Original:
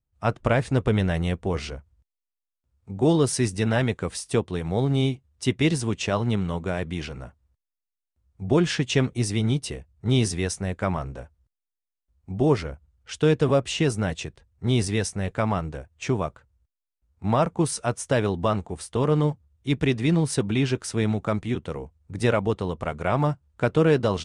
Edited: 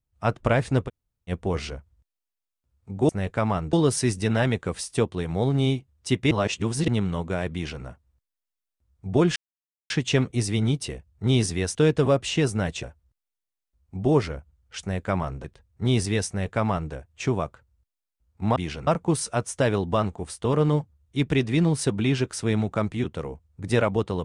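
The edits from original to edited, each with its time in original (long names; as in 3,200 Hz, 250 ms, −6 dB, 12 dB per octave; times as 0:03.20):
0:00.87–0:01.30: fill with room tone, crossfade 0.06 s
0:05.67–0:06.24: reverse
0:06.89–0:07.20: duplicate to 0:17.38
0:08.72: splice in silence 0.54 s
0:10.57–0:11.18: swap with 0:13.18–0:14.26
0:15.10–0:15.74: duplicate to 0:03.09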